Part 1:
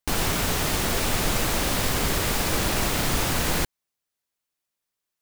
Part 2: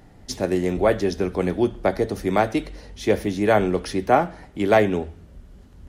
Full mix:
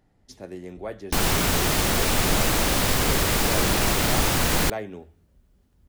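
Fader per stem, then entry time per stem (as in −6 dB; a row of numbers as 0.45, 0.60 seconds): +2.5, −15.5 decibels; 1.05, 0.00 seconds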